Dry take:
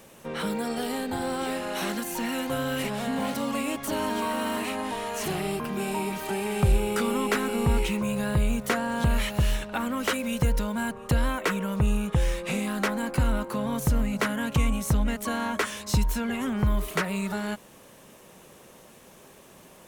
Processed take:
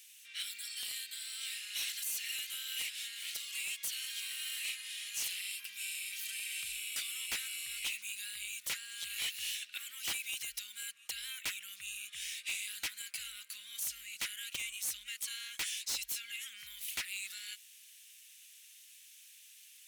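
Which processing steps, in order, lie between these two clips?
inverse Chebyshev high-pass filter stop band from 950 Hz, stop band 50 dB
wave folding −29.5 dBFS

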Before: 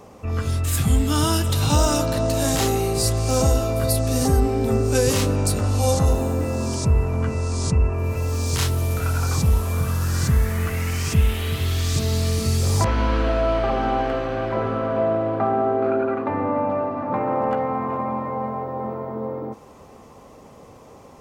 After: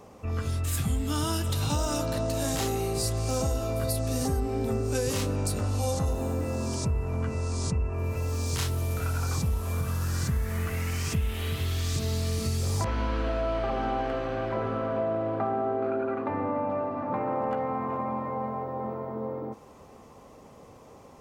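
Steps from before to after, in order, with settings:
downward compressor 3 to 1, threshold −20 dBFS, peak gain reduction 6.5 dB
level −5 dB

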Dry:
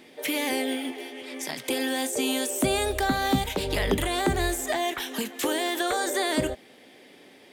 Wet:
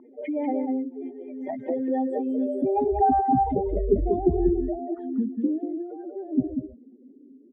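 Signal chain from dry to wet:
expanding power law on the bin magnitudes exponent 3.7
single-tap delay 191 ms −6 dB
low-pass filter sweep 1,000 Hz → 230 Hz, 0:02.56–0:05.71

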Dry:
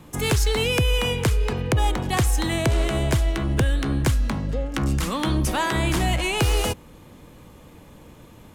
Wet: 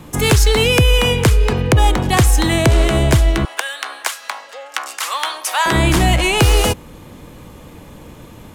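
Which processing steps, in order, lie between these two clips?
0:03.45–0:05.66: high-pass filter 750 Hz 24 dB per octave
level +8.5 dB

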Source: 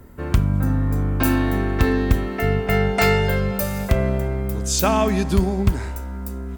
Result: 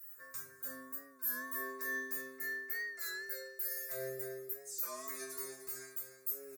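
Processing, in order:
high-pass filter 97 Hz
first difference
notch filter 3,300 Hz, Q 9.5
reversed playback
downward compressor 6 to 1, threshold −43 dBFS, peak gain reduction 25 dB
reversed playback
phaser with its sweep stopped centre 830 Hz, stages 6
noise that follows the level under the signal 29 dB
stiff-string resonator 130 Hz, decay 0.71 s, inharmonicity 0.002
on a send: repeating echo 301 ms, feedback 42%, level −10.5 dB
on the sum: wow of a warped record 33 1/3 rpm, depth 100 cents
level +18 dB

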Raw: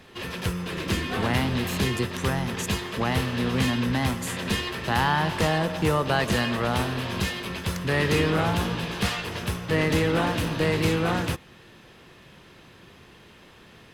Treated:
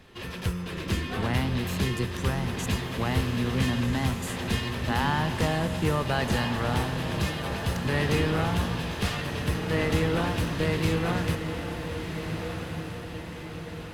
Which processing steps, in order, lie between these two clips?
low-shelf EQ 110 Hz +8.5 dB
feedback delay with all-pass diffusion 1,451 ms, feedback 54%, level −7 dB
level −4.5 dB

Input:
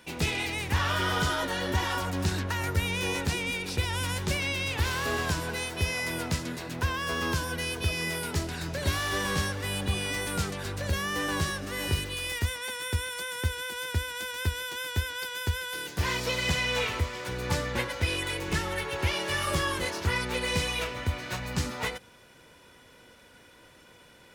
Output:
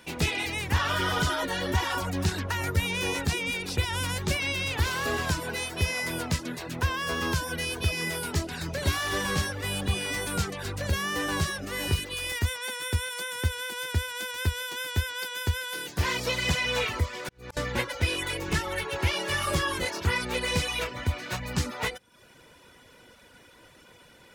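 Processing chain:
0:17.09–0:17.57: volume swells 515 ms
reverb reduction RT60 0.53 s
level +2 dB

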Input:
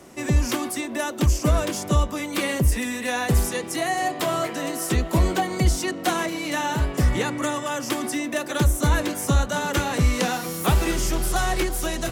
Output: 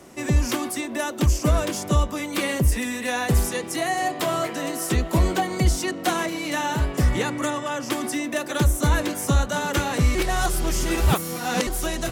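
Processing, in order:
0:07.50–0:07.91: high-shelf EQ 7,900 Hz −10.5 dB
0:10.15–0:11.67: reverse

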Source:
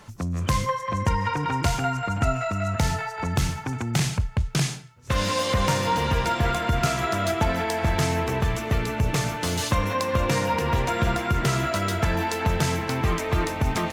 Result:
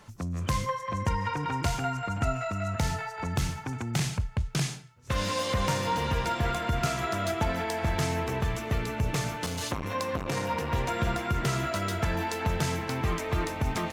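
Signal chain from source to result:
0:09.46–0:10.73: saturating transformer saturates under 650 Hz
level −5 dB

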